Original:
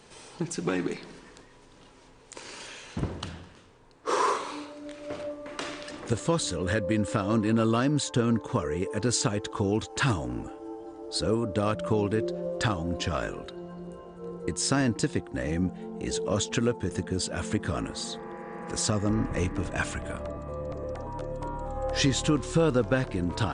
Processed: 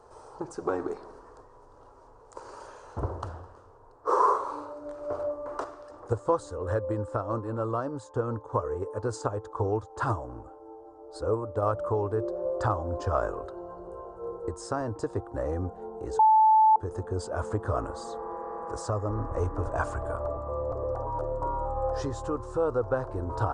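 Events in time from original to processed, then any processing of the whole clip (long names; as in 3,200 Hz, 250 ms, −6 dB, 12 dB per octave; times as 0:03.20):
0:05.64–0:11.62: expander for the loud parts, over −37 dBFS
0:16.19–0:16.76: beep over 873 Hz −16 dBFS
whole clip: flat-topped bell 2,300 Hz −8.5 dB; speech leveller within 3 dB 0.5 s; drawn EQ curve 110 Hz 0 dB, 170 Hz −18 dB, 440 Hz +1 dB, 1,400 Hz +5 dB, 2,200 Hz −14 dB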